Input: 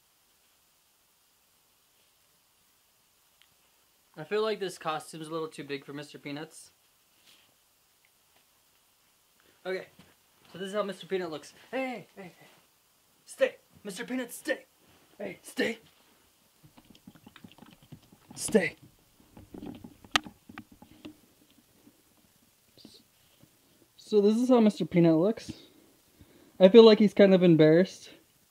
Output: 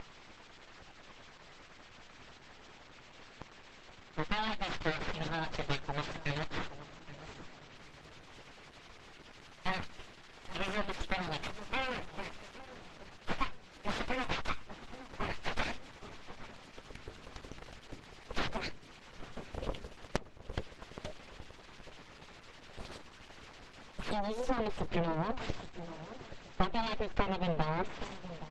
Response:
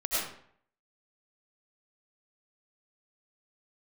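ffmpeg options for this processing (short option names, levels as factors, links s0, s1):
-filter_complex "[0:a]crystalizer=i=4:c=0,acompressor=threshold=0.0224:ratio=16,aeval=exprs='abs(val(0))':c=same,acompressor=mode=upward:threshold=0.00355:ratio=2.5,lowpass=3300,asettb=1/sr,asplit=3[s0][s1][s2];[s0]atrim=end=15.714[s3];[s1]atrim=start=15.71:end=18.62,asetpts=PTS-STARTPTS,afade=t=in:d=0.004:c=qsin,afade=t=out:st=2.906:d=0.004:c=qsin,bandreject=f=50:t=h:w=6,bandreject=f=100:t=h:w=6,bandreject=f=150:t=h:w=6,bandreject=f=200:t=h:w=6,bandreject=f=250:t=h:w=6,bandreject=f=300:t=h:w=6,bandreject=f=350:t=h:w=6,bandreject=f=400:t=h:w=6,bandreject=f=450:t=h:w=6[s4];[s2]atrim=start=18.616[s5];[s3][s4]acrossfade=d=0.004:c1=hsin:c2=qsin[s6];[s6][s5]acrossfade=d=0.004:c1=qsin:c2=hsin,acrossover=split=2100[s7][s8];[s7]aeval=exprs='val(0)*(1-0.5/2+0.5/2*cos(2*PI*10*n/s))':c=same[s9];[s8]aeval=exprs='val(0)*(1-0.5/2-0.5/2*cos(2*PI*10*n/s))':c=same[s10];[s9][s10]amix=inputs=2:normalize=0,asplit=2[s11][s12];[s12]adelay=823,lowpass=f=1100:p=1,volume=0.237,asplit=2[s13][s14];[s14]adelay=823,lowpass=f=1100:p=1,volume=0.45,asplit=2[s15][s16];[s16]adelay=823,lowpass=f=1100:p=1,volume=0.45,asplit=2[s17][s18];[s18]adelay=823,lowpass=f=1100:p=1,volume=0.45[s19];[s11][s13][s15][s17][s19]amix=inputs=5:normalize=0,volume=3.55" -ar 48000 -c:a libopus -b:a 12k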